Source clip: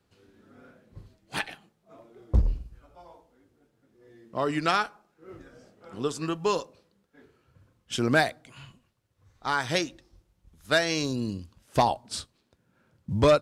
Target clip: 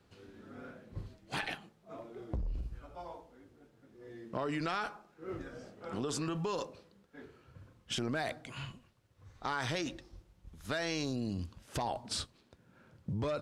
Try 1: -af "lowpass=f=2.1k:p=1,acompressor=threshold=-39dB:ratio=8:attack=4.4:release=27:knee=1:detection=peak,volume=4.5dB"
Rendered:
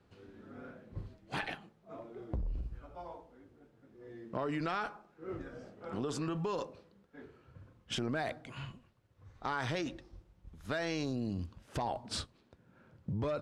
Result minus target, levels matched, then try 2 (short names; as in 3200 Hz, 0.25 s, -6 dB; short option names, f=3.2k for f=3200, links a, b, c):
8000 Hz band -4.5 dB
-af "lowpass=f=6.2k:p=1,acompressor=threshold=-39dB:ratio=8:attack=4.4:release=27:knee=1:detection=peak,volume=4.5dB"